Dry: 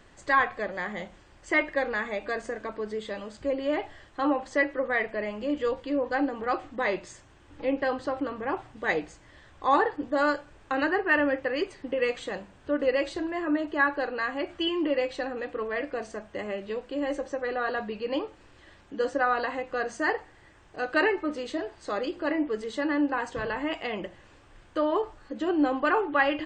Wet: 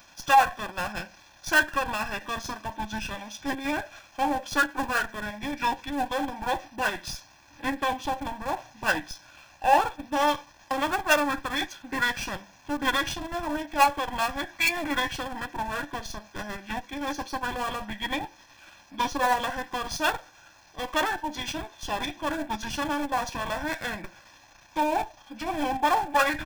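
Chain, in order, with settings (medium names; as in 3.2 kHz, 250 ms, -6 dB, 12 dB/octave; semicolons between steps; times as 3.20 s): partial rectifier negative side -7 dB; RIAA curve recording; formant shift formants -5 st; in parallel at -11.5 dB: Schmitt trigger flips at -31.5 dBFS; on the sum: comb 1.2 ms, depth 79%; trim +2.5 dB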